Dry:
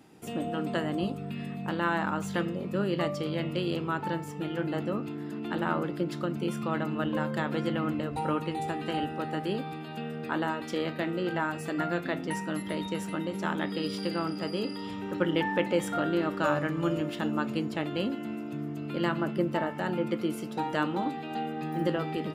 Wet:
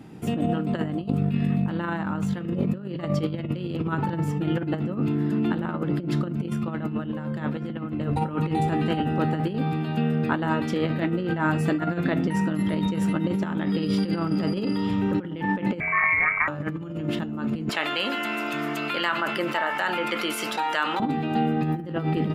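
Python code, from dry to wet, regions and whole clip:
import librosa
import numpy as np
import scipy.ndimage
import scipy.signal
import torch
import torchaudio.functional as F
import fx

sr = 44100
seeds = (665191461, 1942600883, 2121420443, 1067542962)

y = fx.chain(x, sr, fx.doubler(ms=30.0, db=-10.0),
    fx.freq_invert(carrier_hz=2500), at=(15.8, 16.48))
y = fx.chain(y, sr, fx.highpass(hz=1100.0, slope=12),
    fx.env_flatten(amount_pct=70), at=(17.69, 21.0))
y = fx.bass_treble(y, sr, bass_db=14, treble_db=-6)
y = fx.over_compress(y, sr, threshold_db=-27.0, ratio=-0.5)
y = fx.low_shelf(y, sr, hz=120.0, db=-8.0)
y = y * librosa.db_to_amplitude(4.5)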